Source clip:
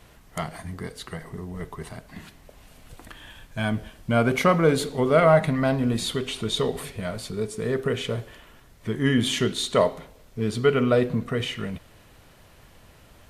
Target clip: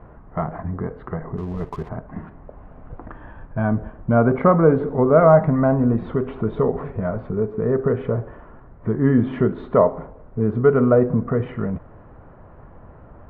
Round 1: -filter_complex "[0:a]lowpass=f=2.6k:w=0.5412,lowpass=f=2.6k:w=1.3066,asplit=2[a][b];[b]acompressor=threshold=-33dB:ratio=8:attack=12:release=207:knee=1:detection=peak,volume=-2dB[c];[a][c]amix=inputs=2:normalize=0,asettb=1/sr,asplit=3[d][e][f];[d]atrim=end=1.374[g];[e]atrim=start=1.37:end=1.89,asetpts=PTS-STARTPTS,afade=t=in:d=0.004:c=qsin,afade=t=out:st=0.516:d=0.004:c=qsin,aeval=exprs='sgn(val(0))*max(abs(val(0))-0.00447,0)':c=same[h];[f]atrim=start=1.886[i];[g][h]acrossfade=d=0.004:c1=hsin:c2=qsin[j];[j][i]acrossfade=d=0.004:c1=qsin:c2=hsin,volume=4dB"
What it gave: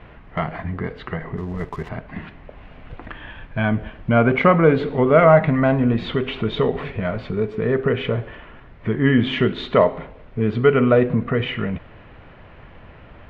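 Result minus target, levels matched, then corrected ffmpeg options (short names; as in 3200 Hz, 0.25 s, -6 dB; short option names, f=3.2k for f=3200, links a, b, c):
2000 Hz band +8.5 dB
-filter_complex "[0:a]lowpass=f=1.3k:w=0.5412,lowpass=f=1.3k:w=1.3066,asplit=2[a][b];[b]acompressor=threshold=-33dB:ratio=8:attack=12:release=207:knee=1:detection=peak,volume=-2dB[c];[a][c]amix=inputs=2:normalize=0,asettb=1/sr,asplit=3[d][e][f];[d]atrim=end=1.374[g];[e]atrim=start=1.37:end=1.89,asetpts=PTS-STARTPTS,afade=t=in:d=0.004:c=qsin,afade=t=out:st=0.516:d=0.004:c=qsin,aeval=exprs='sgn(val(0))*max(abs(val(0))-0.00447,0)':c=same[h];[f]atrim=start=1.886[i];[g][h]acrossfade=d=0.004:c1=hsin:c2=qsin[j];[j][i]acrossfade=d=0.004:c1=qsin:c2=hsin,volume=4dB"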